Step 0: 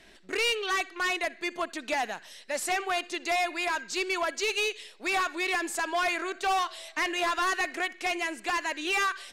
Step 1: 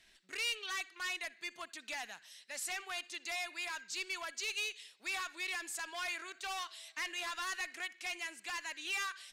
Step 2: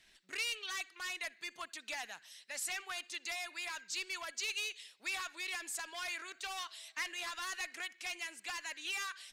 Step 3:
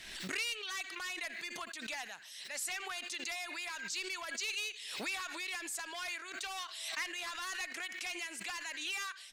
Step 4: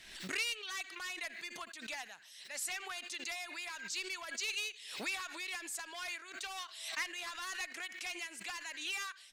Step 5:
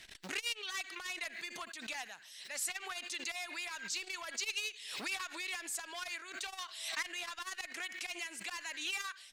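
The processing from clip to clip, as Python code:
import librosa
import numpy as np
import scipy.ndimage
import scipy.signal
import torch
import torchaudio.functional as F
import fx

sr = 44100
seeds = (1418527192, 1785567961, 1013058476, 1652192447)

y1 = fx.tone_stack(x, sr, knobs='5-5-5')
y2 = fx.hpss(y1, sr, part='harmonic', gain_db=-5)
y2 = y2 * 10.0 ** (2.0 / 20.0)
y3 = fx.pre_swell(y2, sr, db_per_s=42.0)
y4 = fx.upward_expand(y3, sr, threshold_db=-48.0, expansion=1.5)
y4 = y4 * 10.0 ** (1.5 / 20.0)
y5 = fx.transformer_sat(y4, sr, knee_hz=2900.0)
y5 = y5 * 10.0 ** (2.5 / 20.0)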